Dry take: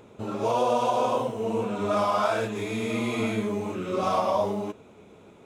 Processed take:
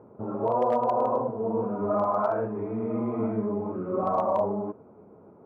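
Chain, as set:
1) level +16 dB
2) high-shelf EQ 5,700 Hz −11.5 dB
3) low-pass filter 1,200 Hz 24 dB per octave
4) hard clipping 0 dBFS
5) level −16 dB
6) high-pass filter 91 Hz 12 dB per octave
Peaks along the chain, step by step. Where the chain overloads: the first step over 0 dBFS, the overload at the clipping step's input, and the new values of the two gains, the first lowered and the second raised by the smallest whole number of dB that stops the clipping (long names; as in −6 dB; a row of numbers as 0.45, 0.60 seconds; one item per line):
+4.0, +4.0, +4.0, 0.0, −16.0, −14.5 dBFS
step 1, 4.0 dB
step 1 +12 dB, step 5 −12 dB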